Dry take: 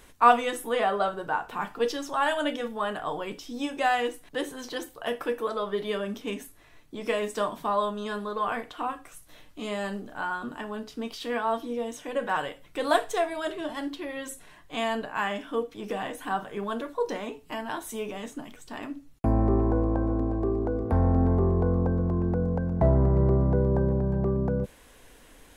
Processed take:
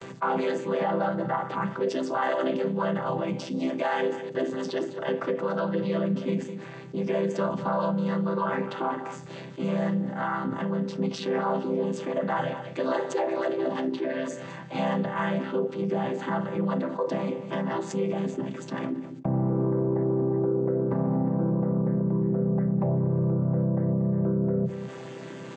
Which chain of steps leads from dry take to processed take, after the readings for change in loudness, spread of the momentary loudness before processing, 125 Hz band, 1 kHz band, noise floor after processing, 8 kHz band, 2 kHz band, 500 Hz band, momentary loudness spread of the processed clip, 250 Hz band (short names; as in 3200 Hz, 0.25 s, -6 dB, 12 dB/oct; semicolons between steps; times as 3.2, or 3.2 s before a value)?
+0.5 dB, 13 LU, 0.0 dB, -2.5 dB, -40 dBFS, -5.0 dB, -2.5 dB, +1.5 dB, 7 LU, +3.5 dB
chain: chord vocoder major triad, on C3; limiter -22 dBFS, peak gain reduction 10.5 dB; gate with hold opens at -58 dBFS; outdoor echo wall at 35 m, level -20 dB; fast leveller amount 50%; gain +3 dB